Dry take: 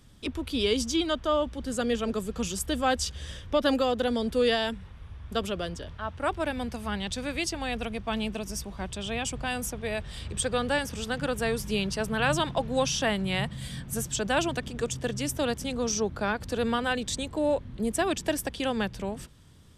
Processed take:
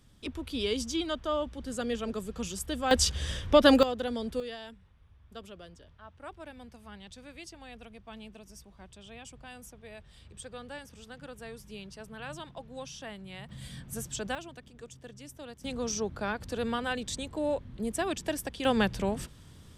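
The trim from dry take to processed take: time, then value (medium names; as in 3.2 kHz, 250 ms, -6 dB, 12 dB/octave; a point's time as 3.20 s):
-5 dB
from 2.91 s +5 dB
from 3.83 s -6 dB
from 4.40 s -16 dB
from 13.49 s -6.5 dB
from 14.35 s -17 dB
from 15.64 s -4.5 dB
from 18.65 s +3 dB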